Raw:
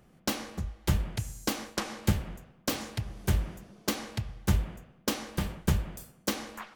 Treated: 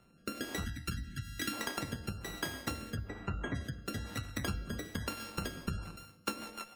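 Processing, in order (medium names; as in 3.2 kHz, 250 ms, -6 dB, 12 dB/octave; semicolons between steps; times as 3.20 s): sorted samples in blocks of 32 samples; bass shelf 120 Hz -6 dB; ever faster or slower copies 176 ms, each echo +3 st, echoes 2; 0.64–1.53 s: high-order bell 670 Hz -15 dB; 2.96–3.55 s: boxcar filter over 9 samples; compression, threshold -32 dBFS, peak gain reduction 10.5 dB; rotary cabinet horn 1.1 Hz, later 7 Hz, at 5.50 s; spectral gate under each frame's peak -30 dB strong; feedback comb 100 Hz, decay 1.2 s, harmonics odd, mix 60%; trim +8 dB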